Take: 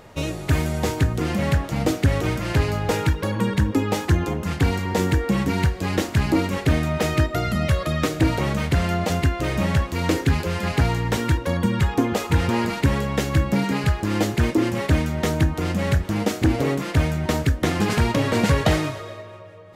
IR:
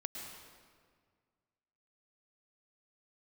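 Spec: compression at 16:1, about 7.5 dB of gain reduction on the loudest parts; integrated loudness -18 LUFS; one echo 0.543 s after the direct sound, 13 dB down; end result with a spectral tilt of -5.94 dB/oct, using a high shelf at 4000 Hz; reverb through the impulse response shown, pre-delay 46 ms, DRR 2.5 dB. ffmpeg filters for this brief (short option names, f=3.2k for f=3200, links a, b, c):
-filter_complex "[0:a]highshelf=f=4k:g=-3.5,acompressor=threshold=-21dB:ratio=16,aecho=1:1:543:0.224,asplit=2[a][b];[1:a]atrim=start_sample=2205,adelay=46[c];[b][c]afir=irnorm=-1:irlink=0,volume=-2dB[d];[a][d]amix=inputs=2:normalize=0,volume=7dB"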